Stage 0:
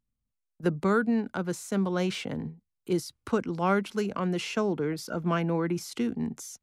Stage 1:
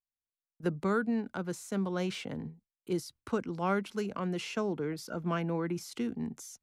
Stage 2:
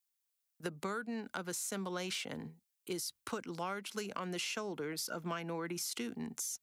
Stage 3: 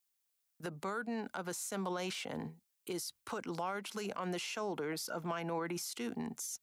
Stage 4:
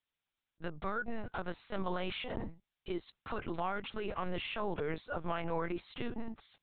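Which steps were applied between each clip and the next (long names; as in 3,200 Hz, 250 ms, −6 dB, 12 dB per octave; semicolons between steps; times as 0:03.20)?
noise gate with hold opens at −47 dBFS; level −5 dB
spectral tilt +3 dB per octave; downward compressor 6 to 1, threshold −37 dBFS, peak gain reduction 11 dB; level +1.5 dB
brickwall limiter −35 dBFS, peak gain reduction 10.5 dB; dynamic equaliser 790 Hz, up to +7 dB, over −59 dBFS, Q 1.1; level +2.5 dB
linear-prediction vocoder at 8 kHz pitch kept; level +2.5 dB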